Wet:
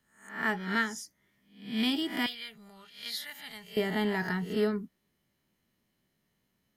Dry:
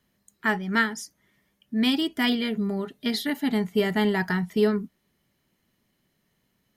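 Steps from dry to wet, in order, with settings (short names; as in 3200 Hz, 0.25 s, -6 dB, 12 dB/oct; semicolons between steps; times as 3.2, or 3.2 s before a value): spectral swells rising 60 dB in 0.49 s; 2.26–3.77 passive tone stack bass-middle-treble 10-0-10; gain -7 dB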